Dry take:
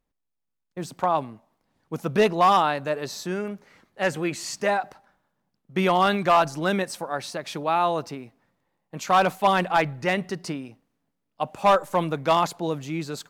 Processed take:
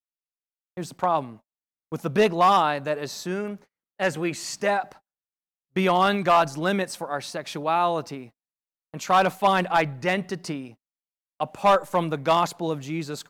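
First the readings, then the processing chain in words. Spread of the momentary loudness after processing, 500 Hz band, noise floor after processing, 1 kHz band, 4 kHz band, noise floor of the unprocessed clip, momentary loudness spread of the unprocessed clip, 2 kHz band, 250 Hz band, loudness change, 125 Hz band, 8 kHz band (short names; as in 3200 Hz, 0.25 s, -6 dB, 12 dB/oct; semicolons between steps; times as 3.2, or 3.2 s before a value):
16 LU, 0.0 dB, under -85 dBFS, 0.0 dB, 0.0 dB, -80 dBFS, 16 LU, 0.0 dB, 0.0 dB, 0.0 dB, 0.0 dB, 0.0 dB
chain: gate -44 dBFS, range -39 dB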